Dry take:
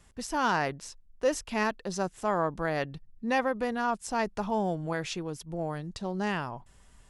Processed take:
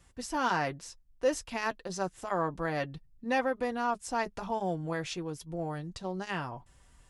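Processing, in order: comb of notches 210 Hz; trim -1 dB

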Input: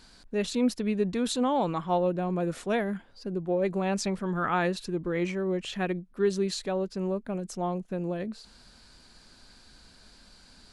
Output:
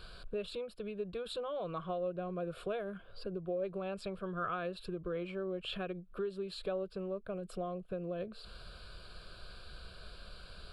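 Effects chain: treble shelf 4.8 kHz -10.5 dB; compression 10:1, threshold -40 dBFS, peak gain reduction 19.5 dB; static phaser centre 1.3 kHz, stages 8; trim +8.5 dB

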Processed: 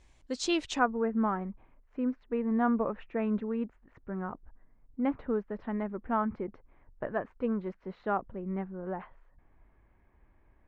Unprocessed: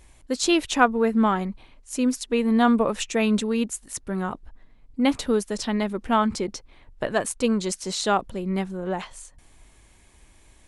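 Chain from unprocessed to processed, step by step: low-pass 7.1 kHz 24 dB/octave, from 0.79 s 1.8 kHz; trim -8.5 dB

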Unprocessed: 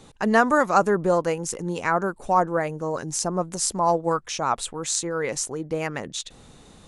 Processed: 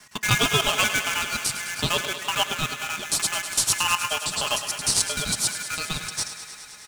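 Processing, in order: time reversed locally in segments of 76 ms; comb 4.7 ms, depth 68%; ring modulator 1.9 kHz; dynamic bell 1 kHz, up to -5 dB, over -36 dBFS, Q 1.2; in parallel at -7 dB: sample-rate reducer 4.4 kHz, jitter 20%; on the sum: graphic EQ 125/500/2000/4000/8000 Hz +9/-4/-9/+5/+6 dB; thinning echo 104 ms, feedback 81%, high-pass 160 Hz, level -11.5 dB; on a send at -14.5 dB: reverberation RT60 0.30 s, pre-delay 3 ms; on the sum: trim +1 dB

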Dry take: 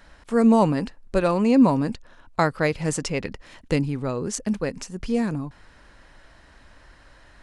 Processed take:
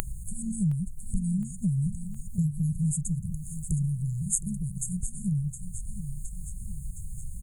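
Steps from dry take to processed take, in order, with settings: added noise brown -52 dBFS; brick-wall FIR band-stop 190–6400 Hz; high-order bell 5.4 kHz -10 dB 1.1 oct; upward compressor, threshold -21 dBFS; 3.06–5.19 s: tone controls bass -2 dB, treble +5 dB; feedback delay 715 ms, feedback 47%, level -12 dB; tape noise reduction on one side only encoder only

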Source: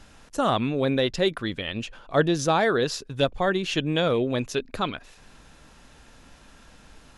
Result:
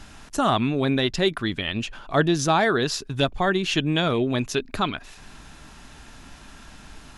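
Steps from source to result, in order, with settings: peaking EQ 510 Hz -12 dB 0.24 oct; in parallel at -2 dB: compression, threshold -35 dBFS, peak gain reduction 17 dB; on the sum: trim +1.5 dB

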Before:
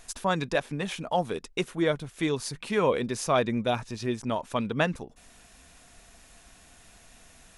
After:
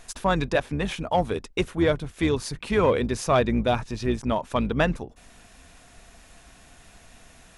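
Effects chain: octave divider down 2 oct, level -5 dB; in parallel at -4 dB: overload inside the chain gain 20.5 dB; on the sum: treble shelf 4.4 kHz -5.5 dB

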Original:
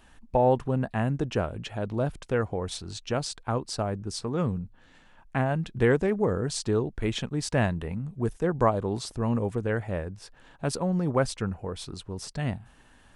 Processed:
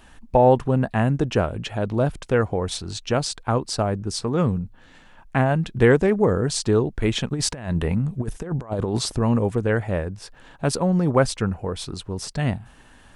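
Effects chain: 7.30–9.19 s: compressor with a negative ratio -30 dBFS, ratio -0.5; trim +6.5 dB

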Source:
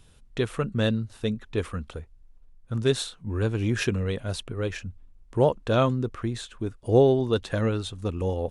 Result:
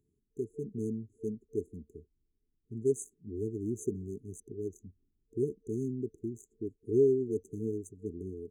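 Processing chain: local Wiener filter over 15 samples; high-pass 150 Hz 6 dB/octave; tone controls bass -8 dB, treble 0 dB; FFT band-reject 450–6100 Hz; level rider gain up to 5 dB; trim -7.5 dB

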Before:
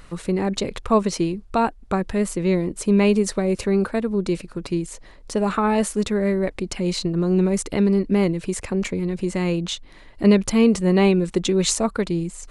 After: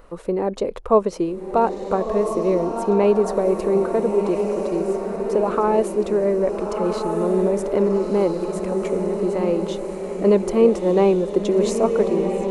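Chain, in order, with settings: graphic EQ 125/500/1000/2000/4000/8000 Hz -10/+10/+4/-5/-6/-7 dB; on a send: echo that smears into a reverb 1344 ms, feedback 54%, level -5 dB; on the sum: trim -3.5 dB

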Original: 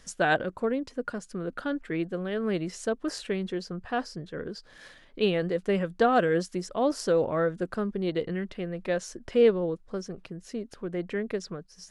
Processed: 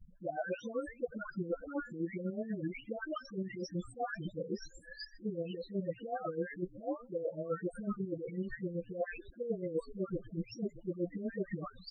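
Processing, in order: delay that grows with frequency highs late, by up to 736 ms; reverse; compression 12:1, threshold -41 dBFS, peak gain reduction 22.5 dB; reverse; frequency-shifting echo 125 ms, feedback 53%, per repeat -60 Hz, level -19 dB; square tremolo 8 Hz, depth 60%, duty 40%; loudest bins only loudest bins 8; trim +9.5 dB

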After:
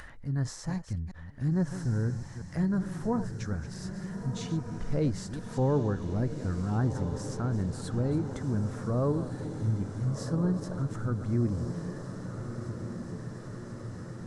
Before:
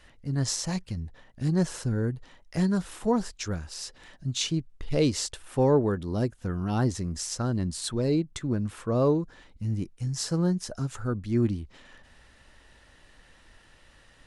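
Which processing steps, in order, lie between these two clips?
chunks repeated in reverse 186 ms, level -12 dB; treble shelf 5.2 kHz -8.5 dB; on a send: echo that smears into a reverb 1405 ms, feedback 65%, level -9 dB; on the sum: upward compressor, threshold -38 dBFS; FFT filter 110 Hz 0 dB, 400 Hz -7 dB, 1.7 kHz -4 dB, 2.7 kHz -17 dB, 8 kHz -10 dB; tape noise reduction on one side only encoder only

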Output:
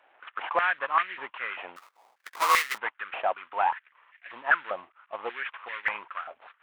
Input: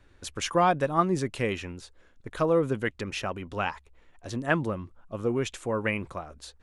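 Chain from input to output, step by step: CVSD coder 16 kbps; 1.76–2.78 s: sample-rate reducer 1.6 kHz, jitter 20%; step-sequenced high-pass 5.1 Hz 720–1900 Hz

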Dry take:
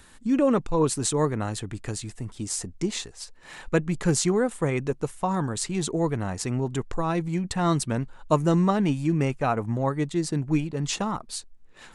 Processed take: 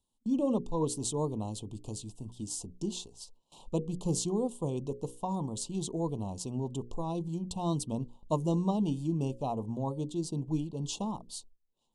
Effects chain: gate with hold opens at -35 dBFS; elliptic band-stop 1–3 kHz, stop band 50 dB; peaking EQ 220 Hz +3.5 dB 0.44 oct; hum notches 60/120/180/240/300/360/420/480/540 Hz; trim -7.5 dB

